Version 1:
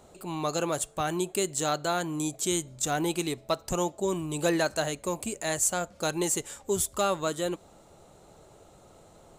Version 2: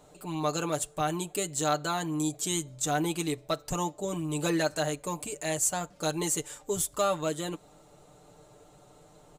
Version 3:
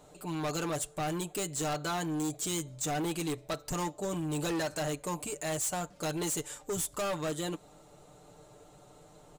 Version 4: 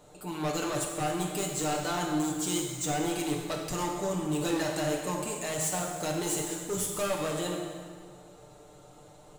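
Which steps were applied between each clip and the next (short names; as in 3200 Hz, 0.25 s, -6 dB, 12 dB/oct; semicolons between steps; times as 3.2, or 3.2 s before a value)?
comb 6.7 ms, depth 72%; gain -3 dB
hard clip -30 dBFS, distortion -8 dB
plate-style reverb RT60 1.8 s, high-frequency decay 0.85×, DRR 0 dB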